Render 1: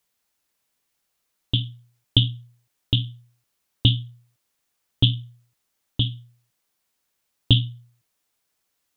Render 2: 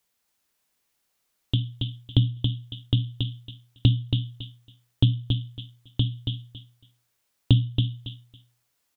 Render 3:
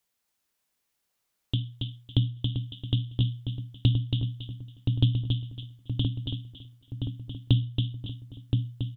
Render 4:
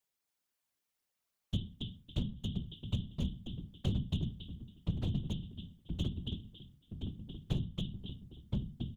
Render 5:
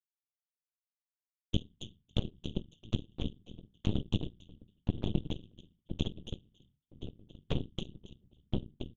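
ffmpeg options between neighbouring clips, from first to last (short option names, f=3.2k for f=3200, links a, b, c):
-filter_complex "[0:a]aecho=1:1:277|554|831:0.501|0.0902|0.0162,acrossover=split=770[a][b];[b]acompressor=threshold=-31dB:ratio=6[c];[a][c]amix=inputs=2:normalize=0"
-filter_complex "[0:a]asplit=2[a][b];[b]adelay=1023,lowpass=f=1.7k:p=1,volume=-4dB,asplit=2[c][d];[d]adelay=1023,lowpass=f=1.7k:p=1,volume=0.5,asplit=2[e][f];[f]adelay=1023,lowpass=f=1.7k:p=1,volume=0.5,asplit=2[g][h];[h]adelay=1023,lowpass=f=1.7k:p=1,volume=0.5,asplit=2[i][j];[j]adelay=1023,lowpass=f=1.7k:p=1,volume=0.5,asplit=2[k][l];[l]adelay=1023,lowpass=f=1.7k:p=1,volume=0.5[m];[a][c][e][g][i][k][m]amix=inputs=7:normalize=0,volume=-4dB"
-af "asoftclip=type=hard:threshold=-21.5dB,afftfilt=real='hypot(re,im)*cos(2*PI*random(0))':imag='hypot(re,im)*sin(2*PI*random(1))':win_size=512:overlap=0.75,volume=-1.5dB"
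-af "agate=range=-33dB:threshold=-56dB:ratio=3:detection=peak,aresample=8000,aresample=44100,aeval=exprs='0.112*(cos(1*acos(clip(val(0)/0.112,-1,1)))-cos(1*PI/2))+0.00447*(cos(3*acos(clip(val(0)/0.112,-1,1)))-cos(3*PI/2))+0.0398*(cos(4*acos(clip(val(0)/0.112,-1,1)))-cos(4*PI/2))+0.0112*(cos(7*acos(clip(val(0)/0.112,-1,1)))-cos(7*PI/2))':c=same,volume=1dB"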